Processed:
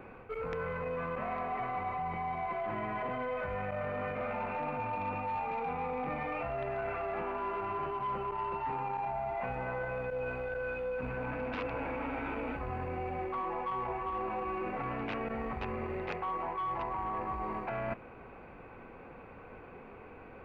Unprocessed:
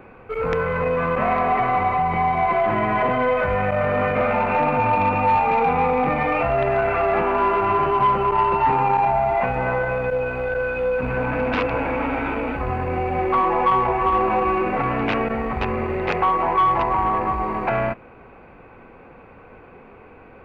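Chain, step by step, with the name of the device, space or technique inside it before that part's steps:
compression on the reversed sound (reversed playback; downward compressor 6 to 1, threshold −29 dBFS, peak gain reduction 14 dB; reversed playback)
level −5 dB

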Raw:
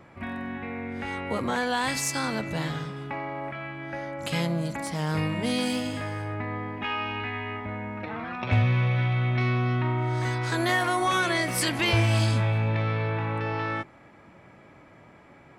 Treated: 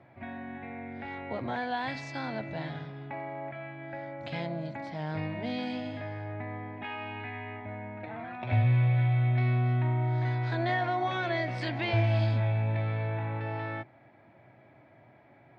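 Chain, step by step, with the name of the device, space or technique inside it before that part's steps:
guitar cabinet (loudspeaker in its box 100–3,800 Hz, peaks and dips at 120 Hz +8 dB, 180 Hz −7 dB, 470 Hz −5 dB, 680 Hz +7 dB, 1,200 Hz −9 dB, 2,900 Hz −6 dB)
level −5.5 dB

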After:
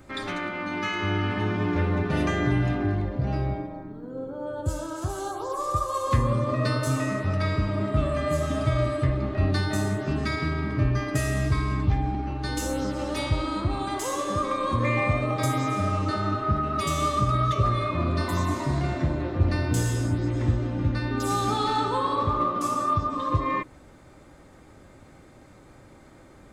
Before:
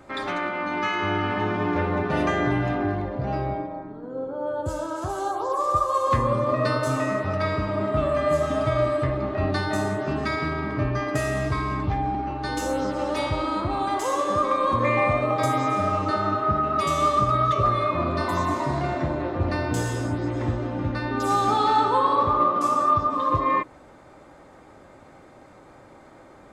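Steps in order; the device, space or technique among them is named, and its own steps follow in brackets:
smiley-face EQ (low-shelf EQ 120 Hz +7 dB; parametric band 800 Hz −7 dB 1.9 octaves; high-shelf EQ 8,500 Hz +6.5 dB)

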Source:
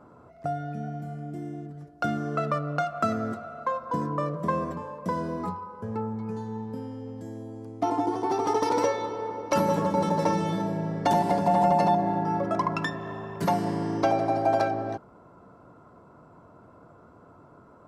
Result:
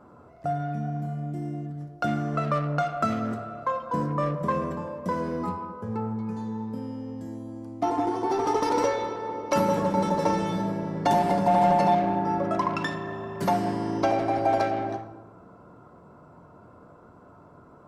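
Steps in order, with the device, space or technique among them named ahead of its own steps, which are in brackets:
saturated reverb return (on a send at −5 dB: convolution reverb RT60 1.0 s, pre-delay 5 ms + soft clipping −25.5 dBFS, distortion −8 dB)

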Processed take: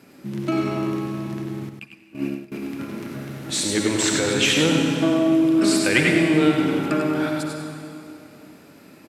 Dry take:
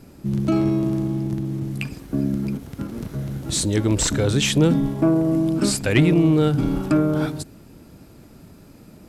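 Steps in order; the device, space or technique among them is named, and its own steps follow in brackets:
PA in a hall (high-pass filter 200 Hz 12 dB per octave; parametric band 2,100 Hz +7.5 dB 1.6 octaves; single-tap delay 90 ms −8.5 dB; convolution reverb RT60 2.7 s, pre-delay 54 ms, DRR 3 dB)
0:01.69–0:02.52: noise gate −21 dBFS, range −20 dB
single-tap delay 102 ms −6.5 dB
level −3 dB

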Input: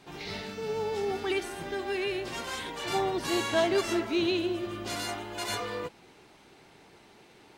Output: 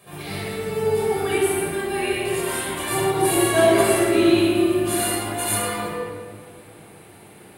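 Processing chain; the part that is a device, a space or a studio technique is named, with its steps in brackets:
0:03.62–0:05.07: flutter between parallel walls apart 9.8 metres, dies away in 0.53 s
budget condenser microphone (high-pass filter 76 Hz; high shelf with overshoot 7,600 Hz +11 dB, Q 3)
rectangular room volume 2,600 cubic metres, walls mixed, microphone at 5.8 metres

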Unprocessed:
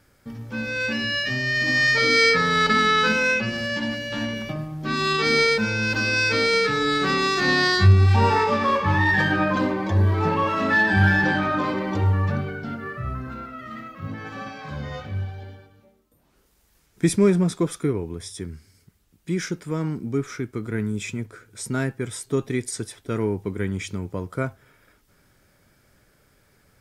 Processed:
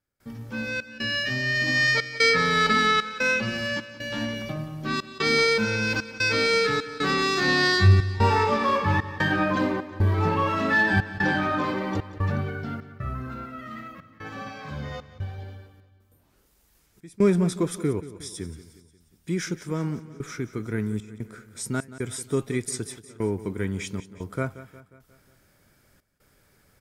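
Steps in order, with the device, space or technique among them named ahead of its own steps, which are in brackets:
high-shelf EQ 8,700 Hz +4 dB
trance gate with a delay (gate pattern ".xxx.xxxxx.xxxx" 75 BPM −24 dB; repeating echo 179 ms, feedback 53%, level −15.5 dB)
level −2 dB

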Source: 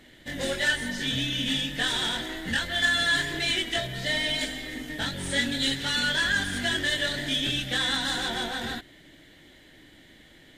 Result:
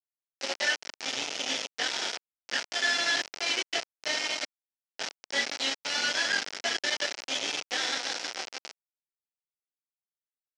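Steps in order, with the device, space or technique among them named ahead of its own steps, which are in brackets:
hand-held game console (bit reduction 4 bits; loudspeaker in its box 460–5,700 Hz, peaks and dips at 1,100 Hz −8 dB, 1,700 Hz −4 dB, 3,600 Hz −7 dB, 5,400 Hz +4 dB)

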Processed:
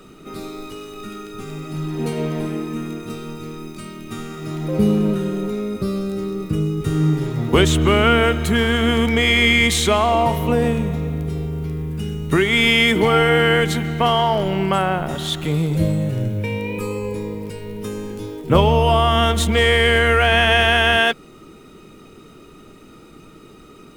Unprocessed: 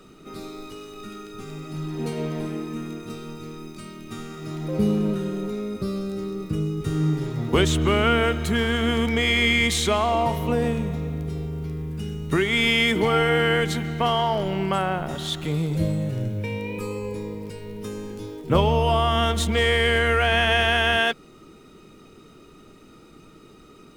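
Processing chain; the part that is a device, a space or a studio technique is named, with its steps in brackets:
exciter from parts (in parallel at −10.5 dB: high-pass filter 4,600 Hz 12 dB per octave + soft clipping −25 dBFS, distortion −17 dB + high-pass filter 2,700 Hz 24 dB per octave)
on the sum: level +5 dB

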